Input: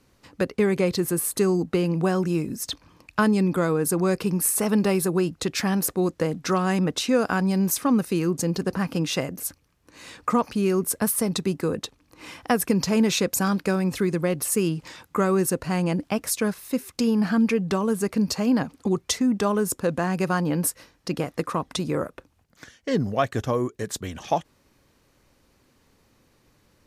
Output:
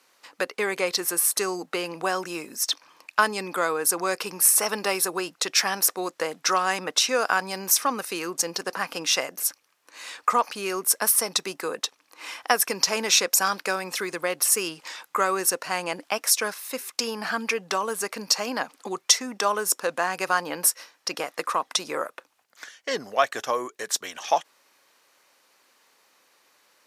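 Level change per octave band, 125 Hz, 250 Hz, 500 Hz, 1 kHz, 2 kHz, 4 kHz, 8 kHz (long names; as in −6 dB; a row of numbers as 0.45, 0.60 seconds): −20.0, −14.0, −4.0, +3.5, +5.0, +7.0, +6.0 decibels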